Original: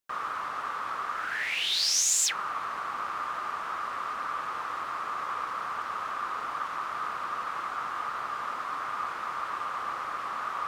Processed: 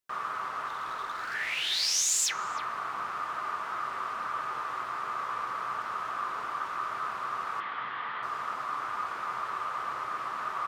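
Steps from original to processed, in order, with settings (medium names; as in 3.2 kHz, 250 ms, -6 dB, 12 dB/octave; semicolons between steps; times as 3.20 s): 0.67–1.34 s: hard clipper -31.5 dBFS, distortion -24 dB; 7.60–8.23 s: cabinet simulation 120–3800 Hz, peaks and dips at 360 Hz -5 dB, 650 Hz -5 dB, 1.3 kHz -5 dB, 1.9 kHz +8 dB, 3.3 kHz +7 dB; speakerphone echo 310 ms, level -11 dB; on a send at -7.5 dB: reverberation RT60 0.65 s, pre-delay 4 ms; on the sum: trim -2 dB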